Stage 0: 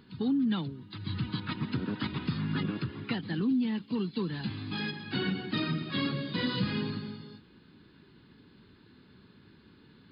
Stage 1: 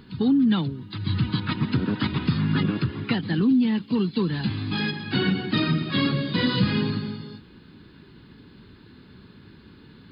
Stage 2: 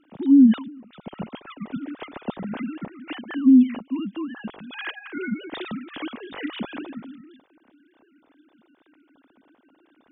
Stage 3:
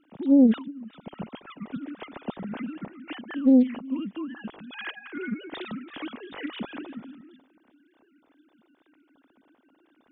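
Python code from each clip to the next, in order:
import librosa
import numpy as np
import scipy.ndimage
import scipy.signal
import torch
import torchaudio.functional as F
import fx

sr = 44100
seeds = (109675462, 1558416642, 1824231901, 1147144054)

y1 = fx.low_shelf(x, sr, hz=92.0, db=6.5)
y1 = F.gain(torch.from_numpy(y1), 7.5).numpy()
y2 = fx.sine_speech(y1, sr)
y3 = y2 + 10.0 ** (-22.5 / 20.0) * np.pad(y2, (int(363 * sr / 1000.0), 0))[:len(y2)]
y3 = fx.doppler_dist(y3, sr, depth_ms=0.33)
y3 = F.gain(torch.from_numpy(y3), -3.5).numpy()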